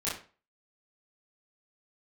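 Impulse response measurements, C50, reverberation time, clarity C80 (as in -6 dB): 3.5 dB, 0.40 s, 11.0 dB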